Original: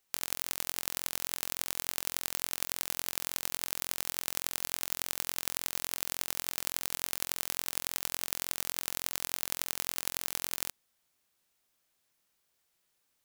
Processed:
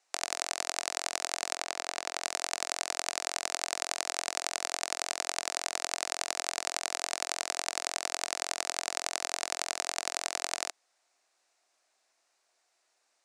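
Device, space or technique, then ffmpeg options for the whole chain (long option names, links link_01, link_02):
phone speaker on a table: -filter_complex "[0:a]asettb=1/sr,asplit=3[link_01][link_02][link_03];[link_01]atrim=end=1.564[link_04];[link_02]atrim=start=1.56:end=2.22,asetpts=PTS-STARTPTS,afade=type=in:duration=0.004:curve=qsin,afade=type=out:start_time=0.656:duration=0.004:curve=qsin,highshelf=frequency=6300:gain=-8.5[link_05];[link_03]atrim=start=2.216[link_06];[link_04][link_05]acrossfade=duration=0.004:curve1=hsin:curve2=qsin[link_07];[link_07][link_06]acrossfade=duration=0.004:curve1=qsin:curve2=hsin,highpass=frequency=350:width=0.5412,highpass=frequency=350:width=1.3066,equalizer=frequency=450:width_type=q:width=4:gain=-4,equalizer=frequency=700:width_type=q:width=4:gain=8,equalizer=frequency=3200:width_type=q:width=4:gain=-7,lowpass=frequency=8100:width=0.5412,lowpass=frequency=8100:width=1.3066,volume=6dB"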